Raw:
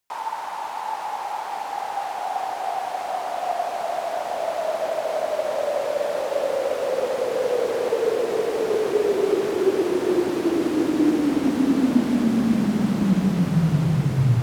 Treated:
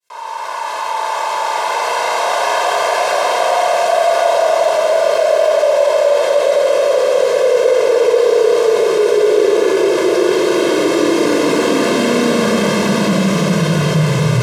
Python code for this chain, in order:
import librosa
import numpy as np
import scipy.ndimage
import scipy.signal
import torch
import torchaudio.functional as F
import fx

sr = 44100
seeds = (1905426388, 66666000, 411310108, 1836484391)

p1 = fx.fade_in_head(x, sr, length_s=2.42)
p2 = scipy.signal.sosfilt(scipy.signal.butter(2, 210.0, 'highpass', fs=sr, output='sos'), p1)
p3 = fx.high_shelf(p2, sr, hz=5000.0, db=9.5)
p4 = fx.notch(p3, sr, hz=770.0, q=12.0)
p5 = p4 + 0.84 * np.pad(p4, (int(1.9 * sr / 1000.0), 0))[:len(p4)]
p6 = fx.rider(p5, sr, range_db=5, speed_s=0.5)
p7 = p5 + (p6 * librosa.db_to_amplitude(2.5))
p8 = fx.air_absorb(p7, sr, metres=53.0)
p9 = p8 + fx.echo_single(p8, sr, ms=241, db=-5.5, dry=0)
p10 = fx.rev_schroeder(p9, sr, rt60_s=1.4, comb_ms=26, drr_db=-8.0)
p11 = fx.env_flatten(p10, sr, amount_pct=50)
y = p11 * librosa.db_to_amplitude(-10.5)